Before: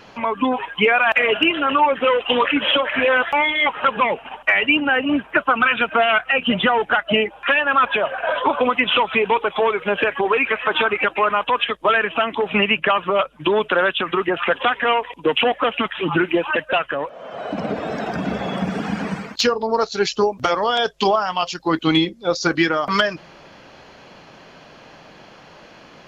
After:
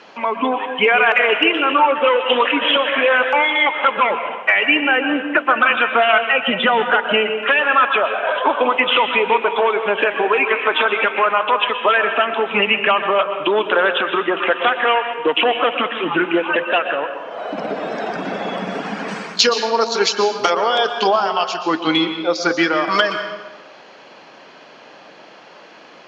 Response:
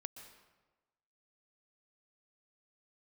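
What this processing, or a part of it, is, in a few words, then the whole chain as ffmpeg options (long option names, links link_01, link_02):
supermarket ceiling speaker: -filter_complex "[0:a]highpass=290,lowpass=6600[link_01];[1:a]atrim=start_sample=2205[link_02];[link_01][link_02]afir=irnorm=-1:irlink=0,asettb=1/sr,asplit=3[link_03][link_04][link_05];[link_03]atrim=end=19.084[link_06];[link_04]atrim=start=19.08:end=20.5,asetpts=PTS-STARTPTS,afade=type=in:duration=0.004:curve=qsin,afade=type=out:start_time=1.416:duration=0.004:curve=qsin,highshelf=frequency=4200:gain=10.5[link_07];[link_05]atrim=start=20.496[link_08];[link_06][link_07]acrossfade=duration=0.004:curve1=hsin:curve2=qsin[link_09];[link_09][link_08]acrossfade=duration=0.004:curve1=qsin:curve2=hsin,volume=6.5dB"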